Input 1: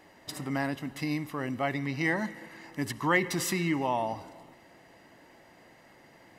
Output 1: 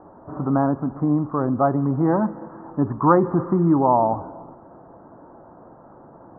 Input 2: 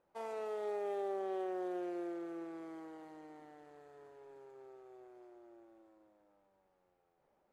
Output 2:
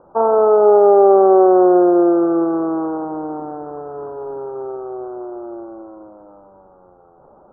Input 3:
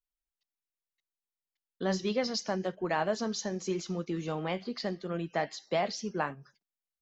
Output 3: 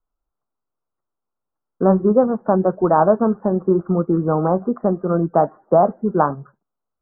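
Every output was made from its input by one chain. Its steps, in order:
steep low-pass 1400 Hz 72 dB/oct; normalise peaks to -2 dBFS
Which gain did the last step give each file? +12.0, +28.5, +16.0 dB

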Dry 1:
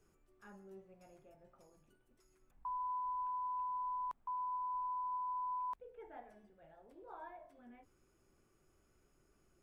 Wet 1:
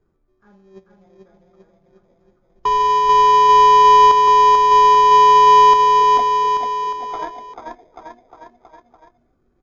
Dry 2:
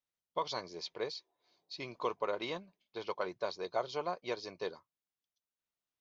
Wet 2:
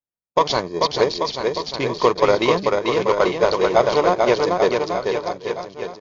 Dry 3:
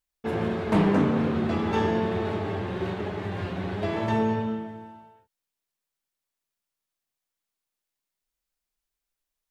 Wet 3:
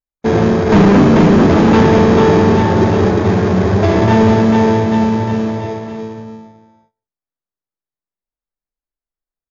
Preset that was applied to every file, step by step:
Wiener smoothing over 15 samples; gate -50 dBFS, range -21 dB; on a send: bouncing-ball echo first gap 0.44 s, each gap 0.9×, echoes 5; on the sum: soft clip -21 dBFS; in parallel at -11 dB: sample-and-hold 31×; on the sum: MP3 56 kbps 16000 Hz; normalise peaks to -3 dBFS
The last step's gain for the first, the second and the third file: +26.0, +19.5, +16.0 dB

